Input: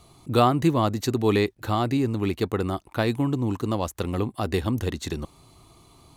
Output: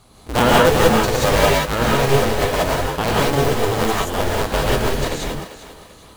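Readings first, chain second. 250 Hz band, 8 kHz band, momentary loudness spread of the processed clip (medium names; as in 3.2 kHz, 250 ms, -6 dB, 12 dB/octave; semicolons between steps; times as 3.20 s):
+2.0 dB, +15.0 dB, 10 LU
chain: cycle switcher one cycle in 2, inverted; thinning echo 394 ms, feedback 39%, high-pass 280 Hz, level -13.5 dB; gated-style reverb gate 210 ms rising, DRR -5 dB; trim +1 dB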